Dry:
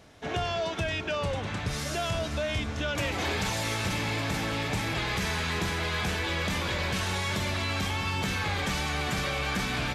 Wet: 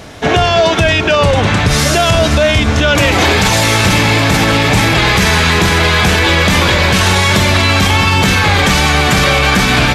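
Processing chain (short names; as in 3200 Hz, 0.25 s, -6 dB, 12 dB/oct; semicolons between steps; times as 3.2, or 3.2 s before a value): maximiser +23 dB; gain -1 dB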